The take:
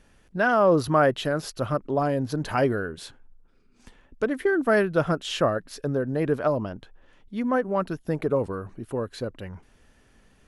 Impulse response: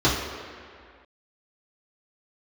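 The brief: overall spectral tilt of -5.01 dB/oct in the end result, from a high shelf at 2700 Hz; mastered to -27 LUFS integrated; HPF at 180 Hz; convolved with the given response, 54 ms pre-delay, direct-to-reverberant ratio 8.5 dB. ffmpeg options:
-filter_complex "[0:a]highpass=180,highshelf=f=2.7k:g=-3.5,asplit=2[a][b];[1:a]atrim=start_sample=2205,adelay=54[c];[b][c]afir=irnorm=-1:irlink=0,volume=-27dB[d];[a][d]amix=inputs=2:normalize=0,volume=-2dB"

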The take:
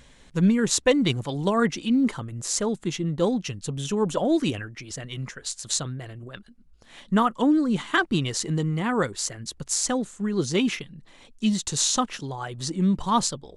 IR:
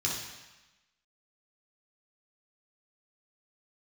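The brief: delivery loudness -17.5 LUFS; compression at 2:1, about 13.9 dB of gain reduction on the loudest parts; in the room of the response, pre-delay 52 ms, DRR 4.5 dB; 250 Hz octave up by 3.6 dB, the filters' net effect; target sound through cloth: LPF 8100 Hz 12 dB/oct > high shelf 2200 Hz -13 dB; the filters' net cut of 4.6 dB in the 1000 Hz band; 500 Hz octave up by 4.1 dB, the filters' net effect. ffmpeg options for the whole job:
-filter_complex "[0:a]equalizer=f=250:t=o:g=3.5,equalizer=f=500:t=o:g=5.5,equalizer=f=1k:t=o:g=-5,acompressor=threshold=-38dB:ratio=2,asplit=2[a][b];[1:a]atrim=start_sample=2205,adelay=52[c];[b][c]afir=irnorm=-1:irlink=0,volume=-11dB[d];[a][d]amix=inputs=2:normalize=0,lowpass=8.1k,highshelf=f=2.2k:g=-13,volume=15dB"

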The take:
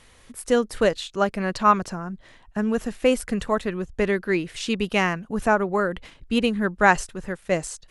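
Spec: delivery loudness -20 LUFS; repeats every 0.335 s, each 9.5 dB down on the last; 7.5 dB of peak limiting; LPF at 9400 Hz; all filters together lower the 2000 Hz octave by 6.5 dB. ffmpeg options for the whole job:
-af "lowpass=9.4k,equalizer=f=2k:t=o:g=-9,alimiter=limit=-13.5dB:level=0:latency=1,aecho=1:1:335|670|1005|1340:0.335|0.111|0.0365|0.012,volume=6.5dB"

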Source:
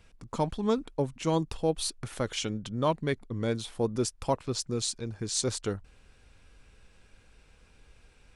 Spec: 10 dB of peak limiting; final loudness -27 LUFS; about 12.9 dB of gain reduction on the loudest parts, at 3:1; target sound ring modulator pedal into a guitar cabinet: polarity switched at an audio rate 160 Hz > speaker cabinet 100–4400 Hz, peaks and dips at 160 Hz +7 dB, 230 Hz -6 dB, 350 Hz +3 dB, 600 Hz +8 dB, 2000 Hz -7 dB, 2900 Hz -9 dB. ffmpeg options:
-af "acompressor=threshold=-40dB:ratio=3,alimiter=level_in=7.5dB:limit=-24dB:level=0:latency=1,volume=-7.5dB,aeval=exprs='val(0)*sgn(sin(2*PI*160*n/s))':c=same,highpass=100,equalizer=f=160:t=q:w=4:g=7,equalizer=f=230:t=q:w=4:g=-6,equalizer=f=350:t=q:w=4:g=3,equalizer=f=600:t=q:w=4:g=8,equalizer=f=2k:t=q:w=4:g=-7,equalizer=f=2.9k:t=q:w=4:g=-9,lowpass=f=4.4k:w=0.5412,lowpass=f=4.4k:w=1.3066,volume=15.5dB"

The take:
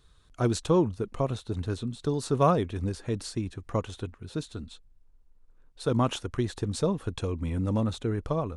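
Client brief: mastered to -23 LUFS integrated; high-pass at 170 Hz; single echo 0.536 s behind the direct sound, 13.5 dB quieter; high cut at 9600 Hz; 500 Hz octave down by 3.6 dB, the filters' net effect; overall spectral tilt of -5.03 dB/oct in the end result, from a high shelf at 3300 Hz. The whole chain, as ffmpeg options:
-af "highpass=170,lowpass=9.6k,equalizer=f=500:t=o:g=-4.5,highshelf=f=3.3k:g=5.5,aecho=1:1:536:0.211,volume=9dB"

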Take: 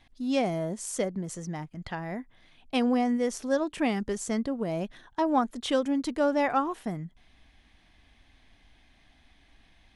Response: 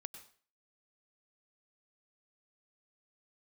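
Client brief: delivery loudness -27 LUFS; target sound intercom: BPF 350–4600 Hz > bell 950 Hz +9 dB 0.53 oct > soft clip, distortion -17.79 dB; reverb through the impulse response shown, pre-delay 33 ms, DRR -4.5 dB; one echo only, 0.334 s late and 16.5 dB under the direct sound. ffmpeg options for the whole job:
-filter_complex "[0:a]aecho=1:1:334:0.15,asplit=2[a][b];[1:a]atrim=start_sample=2205,adelay=33[c];[b][c]afir=irnorm=-1:irlink=0,volume=9dB[d];[a][d]amix=inputs=2:normalize=0,highpass=350,lowpass=4.6k,equalizer=f=950:t=o:w=0.53:g=9,asoftclip=threshold=-10.5dB,volume=-2.5dB"

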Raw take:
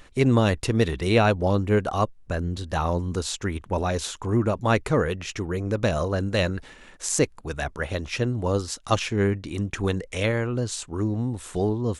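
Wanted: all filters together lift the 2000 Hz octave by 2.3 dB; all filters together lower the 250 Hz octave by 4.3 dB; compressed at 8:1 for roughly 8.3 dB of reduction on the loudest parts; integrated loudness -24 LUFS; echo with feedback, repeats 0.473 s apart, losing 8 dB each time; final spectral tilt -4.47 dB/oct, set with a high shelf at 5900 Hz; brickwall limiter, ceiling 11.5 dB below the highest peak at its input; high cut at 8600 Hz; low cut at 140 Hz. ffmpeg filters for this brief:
-af "highpass=140,lowpass=8.6k,equalizer=f=250:t=o:g=-5,equalizer=f=2k:t=o:g=3.5,highshelf=f=5.9k:g=-4,acompressor=threshold=-24dB:ratio=8,alimiter=limit=-22dB:level=0:latency=1,aecho=1:1:473|946|1419|1892|2365:0.398|0.159|0.0637|0.0255|0.0102,volume=9.5dB"

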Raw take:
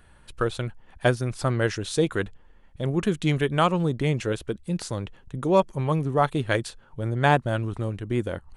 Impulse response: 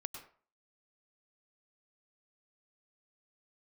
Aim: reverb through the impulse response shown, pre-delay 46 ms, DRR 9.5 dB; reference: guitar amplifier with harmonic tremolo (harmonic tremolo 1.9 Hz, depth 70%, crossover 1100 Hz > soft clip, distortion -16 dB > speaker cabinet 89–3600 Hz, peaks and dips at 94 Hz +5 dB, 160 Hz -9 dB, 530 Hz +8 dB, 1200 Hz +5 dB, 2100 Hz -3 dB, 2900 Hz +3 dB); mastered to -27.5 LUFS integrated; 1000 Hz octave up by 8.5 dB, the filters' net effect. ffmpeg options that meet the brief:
-filter_complex "[0:a]equalizer=f=1k:t=o:g=8,asplit=2[a][b];[1:a]atrim=start_sample=2205,adelay=46[c];[b][c]afir=irnorm=-1:irlink=0,volume=-7.5dB[d];[a][d]amix=inputs=2:normalize=0,acrossover=split=1100[e][f];[e]aeval=exprs='val(0)*(1-0.7/2+0.7/2*cos(2*PI*1.9*n/s))':c=same[g];[f]aeval=exprs='val(0)*(1-0.7/2-0.7/2*cos(2*PI*1.9*n/s))':c=same[h];[g][h]amix=inputs=2:normalize=0,asoftclip=threshold=-12dB,highpass=89,equalizer=f=94:t=q:w=4:g=5,equalizer=f=160:t=q:w=4:g=-9,equalizer=f=530:t=q:w=4:g=8,equalizer=f=1.2k:t=q:w=4:g=5,equalizer=f=2.1k:t=q:w=4:g=-3,equalizer=f=2.9k:t=q:w=4:g=3,lowpass=f=3.6k:w=0.5412,lowpass=f=3.6k:w=1.3066,volume=-2dB"

